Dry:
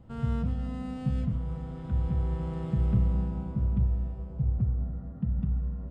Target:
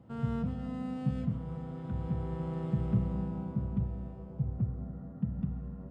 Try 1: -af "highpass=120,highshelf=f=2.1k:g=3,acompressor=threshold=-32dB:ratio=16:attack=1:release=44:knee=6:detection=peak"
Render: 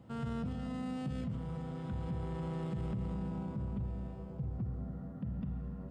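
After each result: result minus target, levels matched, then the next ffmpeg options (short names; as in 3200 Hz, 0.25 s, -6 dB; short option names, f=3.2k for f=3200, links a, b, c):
compressor: peak gain reduction +13 dB; 4000 Hz band +8.0 dB
-af "highpass=120,highshelf=f=2.1k:g=3"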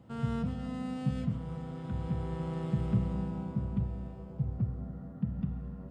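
4000 Hz band +6.0 dB
-af "highpass=120,highshelf=f=2.1k:g=-5.5"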